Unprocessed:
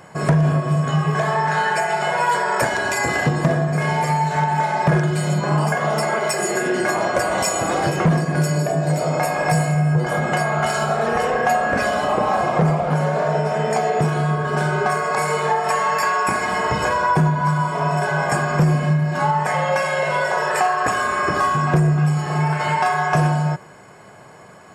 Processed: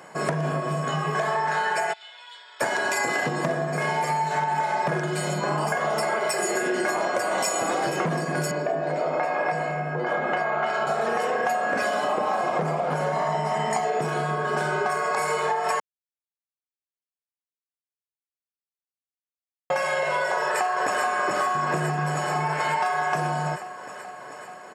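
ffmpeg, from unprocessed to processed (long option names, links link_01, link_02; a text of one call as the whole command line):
ffmpeg -i in.wav -filter_complex "[0:a]asplit=3[link_01][link_02][link_03];[link_01]afade=type=out:start_time=1.92:duration=0.02[link_04];[link_02]bandpass=frequency=3500:width_type=q:width=9.4,afade=type=in:start_time=1.92:duration=0.02,afade=type=out:start_time=2.6:duration=0.02[link_05];[link_03]afade=type=in:start_time=2.6:duration=0.02[link_06];[link_04][link_05][link_06]amix=inputs=3:normalize=0,asettb=1/sr,asplit=3[link_07][link_08][link_09];[link_07]atrim=end=6.004[link_10];[link_08]atrim=start=6:end=6.42,asetpts=PTS-STARTPTS,afade=type=in:duration=0.004:curve=qsin,afade=type=out:start_time=0.416:duration=0.004:curve=qsin,bandreject=frequency=6600:width=11[link_11];[link_09]atrim=start=6.416[link_12];[link_10][link_11]acrossfade=duration=0.004:curve1=hsin:curve2=qsin[link_13];[link_13][link_12]acrossfade=duration=0.004:curve1=qsin:curve2=hsin,asettb=1/sr,asplit=3[link_14][link_15][link_16];[link_14]atrim=end=8.514[link_17];[link_15]atrim=start=8.51:end=10.87,asetpts=PTS-STARTPTS,afade=type=in:duration=0.004:curve=qsin,afade=type=out:start_time=2.356:duration=0.004:curve=qsin,highpass=200,lowpass=2900[link_18];[link_16]atrim=start=10.866[link_19];[link_17][link_18]acrossfade=duration=0.004:curve1=hsin:curve2=qsin[link_20];[link_20][link_19]acrossfade=duration=0.004:curve1=qsin:curve2=hsin,asettb=1/sr,asplit=3[link_21][link_22][link_23];[link_21]atrim=end=13.124[link_24];[link_22]atrim=start=13.12:end=13.85,asetpts=PTS-STARTPTS,afade=type=in:duration=0.004:curve=qsin,afade=type=out:start_time=0.726:duration=0.004:curve=qsin,aecho=1:1:1:0.65,atrim=end_sample=32193[link_25];[link_23]atrim=start=13.846[link_26];[link_24][link_25]acrossfade=duration=0.004:curve1=hsin:curve2=qsin[link_27];[link_27][link_26]acrossfade=duration=0.004:curve1=qsin:curve2=hsin,asplit=2[link_28][link_29];[link_29]afade=type=in:start_time=20.33:duration=0.01,afade=type=out:start_time=21:duration=0.01,aecho=0:1:430|860|1290|1720|2150|2580|3010|3440|3870|4300|4730|5160:0.630957|0.473218|0.354914|0.266185|0.199639|0.149729|0.112297|0.0842226|0.063167|0.0473752|0.0355314|0.0266486[link_30];[link_28][link_30]amix=inputs=2:normalize=0,asplit=3[link_31][link_32][link_33];[link_31]atrim=end=15.8,asetpts=PTS-STARTPTS,afade=type=out:start_time=15.796:duration=0.004:curve=hsin[link_34];[link_32]atrim=start=15.8:end=19.7,asetpts=PTS-STARTPTS,volume=0[link_35];[link_33]atrim=start=19.7,asetpts=PTS-STARTPTS,afade=type=in:duration=0.004:curve=hsin[link_36];[link_34][link_35][link_36]concat=n=3:v=0:a=1,highpass=250,acompressor=threshold=-20dB:ratio=6,volume=-1dB" out.wav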